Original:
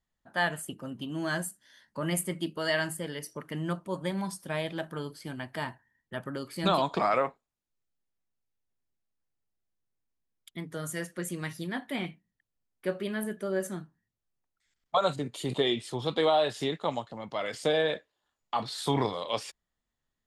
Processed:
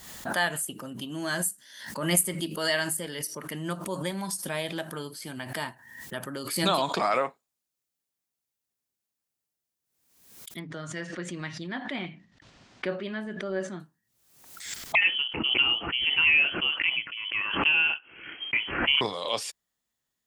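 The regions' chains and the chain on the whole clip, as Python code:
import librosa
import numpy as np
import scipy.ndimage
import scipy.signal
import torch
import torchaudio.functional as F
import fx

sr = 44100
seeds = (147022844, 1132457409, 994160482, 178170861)

y = fx.chain(x, sr, fx.gaussian_blur(sigma=2.0),
    fx.peak_eq(hz=460.0, db=-6.0, octaves=0.25),
    fx.sustainer(db_per_s=120.0), at=(10.59, 13.8))
y = fx.chain(y, sr, fx.freq_invert(carrier_hz=3200),
    fx.peak_eq(hz=320.0, db=5.5, octaves=0.65), at=(14.95, 19.01))
y = fx.highpass(y, sr, hz=150.0, slope=6)
y = fx.high_shelf(y, sr, hz=4300.0, db=11.0)
y = fx.pre_swell(y, sr, db_per_s=65.0)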